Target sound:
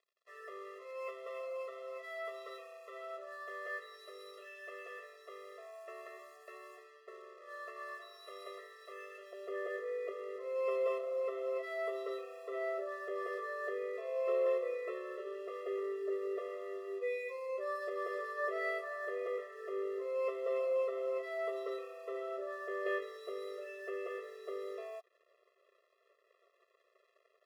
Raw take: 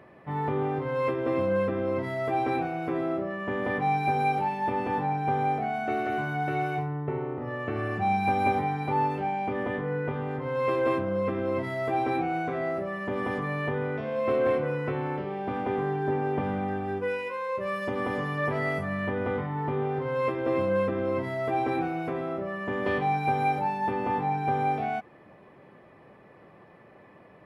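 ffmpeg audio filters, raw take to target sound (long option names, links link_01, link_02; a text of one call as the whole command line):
ffmpeg -i in.wav -af "asetnsamples=nb_out_samples=441:pad=0,asendcmd='9.33 highpass f 150',highpass=800,aeval=exprs='sgn(val(0))*max(abs(val(0))-0.00237,0)':channel_layout=same,afftfilt=real='re*eq(mod(floor(b*sr/1024/350),2),1)':imag='im*eq(mod(floor(b*sr/1024/350),2),1)':win_size=1024:overlap=0.75,volume=-6dB" out.wav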